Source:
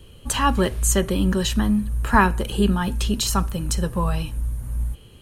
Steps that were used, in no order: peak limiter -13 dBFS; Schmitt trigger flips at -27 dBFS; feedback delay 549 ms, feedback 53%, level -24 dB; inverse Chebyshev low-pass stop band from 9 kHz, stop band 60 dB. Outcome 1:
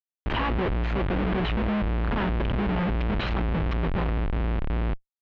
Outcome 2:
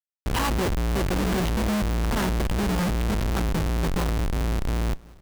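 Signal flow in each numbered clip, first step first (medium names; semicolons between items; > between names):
peak limiter > feedback delay > Schmitt trigger > inverse Chebyshev low-pass; inverse Chebyshev low-pass > peak limiter > Schmitt trigger > feedback delay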